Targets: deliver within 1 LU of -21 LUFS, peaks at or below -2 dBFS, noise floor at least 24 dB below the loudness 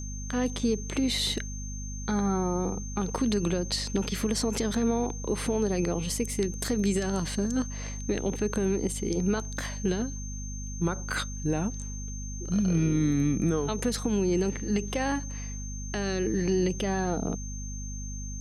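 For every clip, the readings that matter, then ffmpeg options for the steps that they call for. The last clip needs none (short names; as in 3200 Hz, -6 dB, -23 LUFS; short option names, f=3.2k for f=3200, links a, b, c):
hum 50 Hz; harmonics up to 250 Hz; hum level -34 dBFS; steady tone 6300 Hz; tone level -41 dBFS; loudness -29.5 LUFS; peak -16.0 dBFS; loudness target -21.0 LUFS
-> -af "bandreject=f=50:t=h:w=4,bandreject=f=100:t=h:w=4,bandreject=f=150:t=h:w=4,bandreject=f=200:t=h:w=4,bandreject=f=250:t=h:w=4"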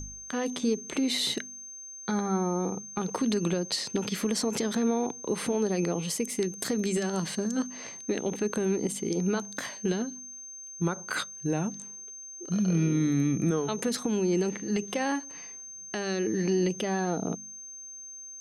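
hum none; steady tone 6300 Hz; tone level -41 dBFS
-> -af "bandreject=f=6.3k:w=30"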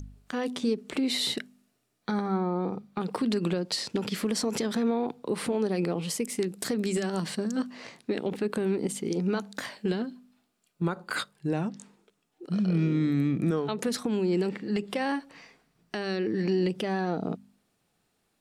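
steady tone none; loudness -29.5 LUFS; peak -16.5 dBFS; loudness target -21.0 LUFS
-> -af "volume=8.5dB"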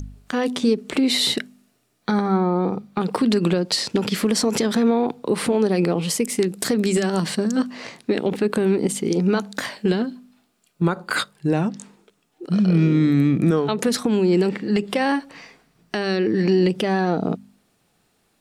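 loudness -21.5 LUFS; peak -8.0 dBFS; noise floor -66 dBFS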